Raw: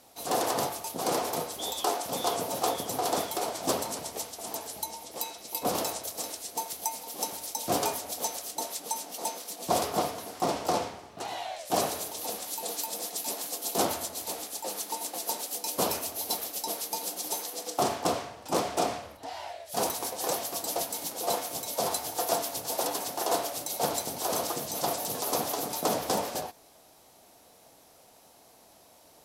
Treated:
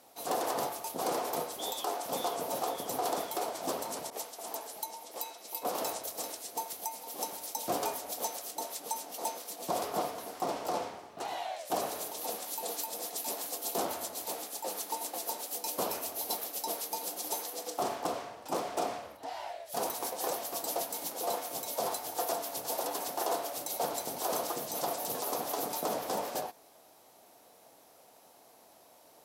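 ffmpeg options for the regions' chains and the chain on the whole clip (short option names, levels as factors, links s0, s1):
-filter_complex "[0:a]asettb=1/sr,asplit=3[s0][s1][s2];[s0]atrim=end=4.104[s3];[s1]atrim=start=4.1:end=5.82,asetpts=PTS-STARTPTS,afade=t=in:d=0.004:c=qsin,afade=t=out:st=1.716:d=0.004:c=qsin,highpass=f=350:p=1,adynamicequalizer=threshold=0.00501:dfrequency=1500:dqfactor=0.7:tfrequency=1500:tqfactor=0.7:attack=5:release=100:ratio=0.375:range=2:mode=cutabove:tftype=highshelf[s4];[s2]atrim=start=5.816[s5];[s3][s4]acrossfade=d=0.004:c1=hsin:c2=qsin[s6];[s6][s5]acrossfade=d=0.004:c1=qsin:c2=hsin,lowpass=f=1400:p=1,aemphasis=mode=production:type=bsi,alimiter=limit=0.0794:level=0:latency=1:release=271,volume=1.12"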